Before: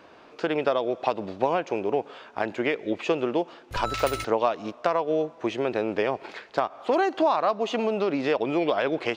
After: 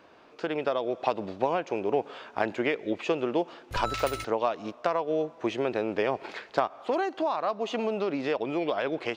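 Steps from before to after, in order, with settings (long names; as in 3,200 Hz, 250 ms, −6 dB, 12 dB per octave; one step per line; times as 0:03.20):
speech leveller within 5 dB 0.5 s
level −3 dB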